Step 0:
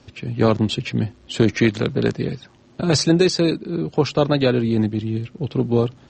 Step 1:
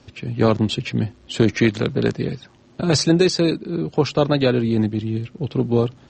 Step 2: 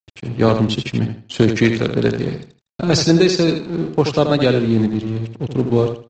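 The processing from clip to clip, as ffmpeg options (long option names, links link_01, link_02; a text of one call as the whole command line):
ffmpeg -i in.wav -af anull out.wav
ffmpeg -i in.wav -af "aresample=16000,aeval=exprs='sgn(val(0))*max(abs(val(0))-0.0126,0)':channel_layout=same,aresample=44100,aecho=1:1:79|158|237:0.422|0.11|0.0285,volume=2.5dB" out.wav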